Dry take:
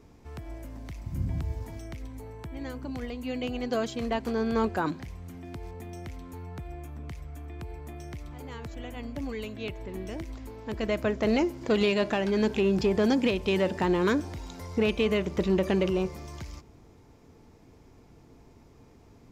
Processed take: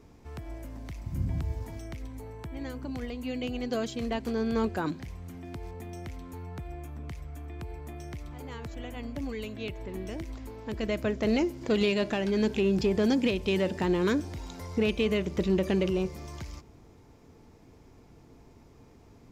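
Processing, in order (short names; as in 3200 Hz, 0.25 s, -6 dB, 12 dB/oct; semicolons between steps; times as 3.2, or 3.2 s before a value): dynamic EQ 1000 Hz, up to -5 dB, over -41 dBFS, Q 0.75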